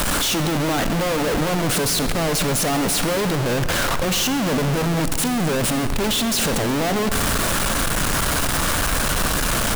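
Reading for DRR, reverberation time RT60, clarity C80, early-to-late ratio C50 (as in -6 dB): 9.5 dB, 2.7 s, 11.0 dB, 10.0 dB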